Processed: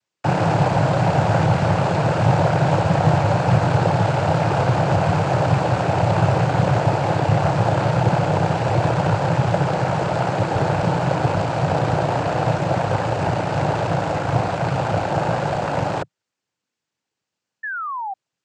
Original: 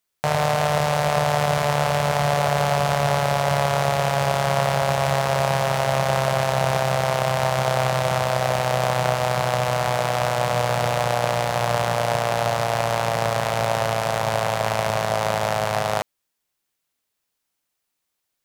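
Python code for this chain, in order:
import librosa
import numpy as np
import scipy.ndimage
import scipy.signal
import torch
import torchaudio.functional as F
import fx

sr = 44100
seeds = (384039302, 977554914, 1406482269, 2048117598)

y = fx.noise_vocoder(x, sr, seeds[0], bands=8)
y = fx.tilt_eq(y, sr, slope=-2.5)
y = fx.spec_paint(y, sr, seeds[1], shape='fall', start_s=17.63, length_s=0.51, low_hz=750.0, high_hz=1800.0, level_db=-27.0)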